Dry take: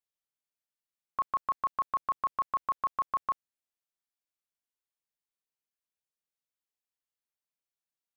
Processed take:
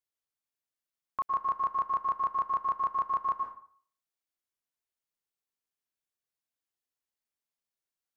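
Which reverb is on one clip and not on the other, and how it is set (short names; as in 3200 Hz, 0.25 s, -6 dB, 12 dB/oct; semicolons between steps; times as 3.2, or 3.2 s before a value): plate-style reverb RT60 0.52 s, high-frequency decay 0.65×, pre-delay 0.1 s, DRR 4.5 dB; gain -1.5 dB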